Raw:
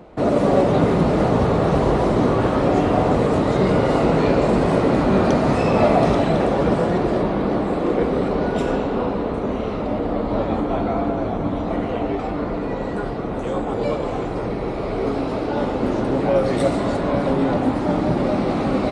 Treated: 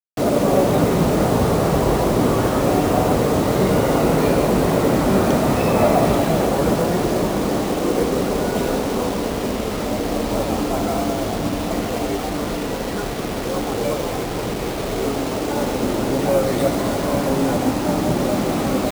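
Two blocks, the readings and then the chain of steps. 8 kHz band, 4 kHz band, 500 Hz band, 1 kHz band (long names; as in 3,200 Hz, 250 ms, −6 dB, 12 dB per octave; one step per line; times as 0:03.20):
can't be measured, +6.0 dB, 0.0 dB, 0.0 dB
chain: four-comb reverb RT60 3.4 s, combs from 30 ms, DRR 16 dB
bit reduction 5 bits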